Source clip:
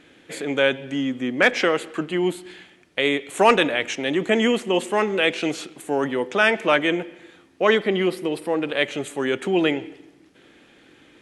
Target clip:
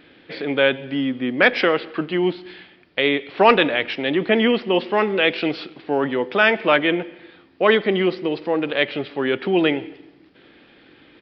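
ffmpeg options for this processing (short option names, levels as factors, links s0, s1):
-af "aresample=11025,aresample=44100,volume=1.26"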